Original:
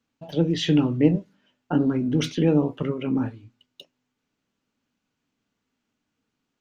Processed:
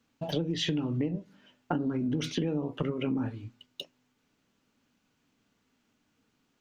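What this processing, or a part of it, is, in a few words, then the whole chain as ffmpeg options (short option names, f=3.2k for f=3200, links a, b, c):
serial compression, leveller first: -af "acompressor=threshold=-24dB:ratio=2,acompressor=threshold=-33dB:ratio=6,volume=5.5dB"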